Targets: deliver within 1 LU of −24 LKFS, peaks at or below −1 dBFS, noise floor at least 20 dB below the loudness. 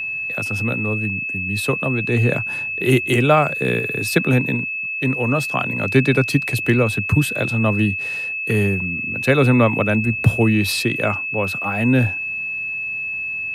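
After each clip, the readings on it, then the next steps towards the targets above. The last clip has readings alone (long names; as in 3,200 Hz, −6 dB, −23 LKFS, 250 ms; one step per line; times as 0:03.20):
interfering tone 2,600 Hz; level of the tone −23 dBFS; integrated loudness −19.0 LKFS; sample peak −1.5 dBFS; target loudness −24.0 LKFS
→ notch filter 2,600 Hz, Q 30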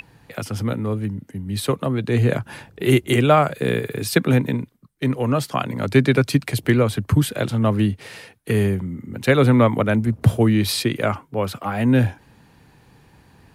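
interfering tone none found; integrated loudness −20.5 LKFS; sample peak −2.0 dBFS; target loudness −24.0 LKFS
→ level −3.5 dB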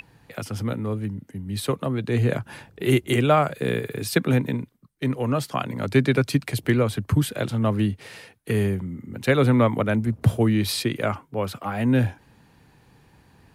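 integrated loudness −24.0 LKFS; sample peak −5.5 dBFS; background noise floor −57 dBFS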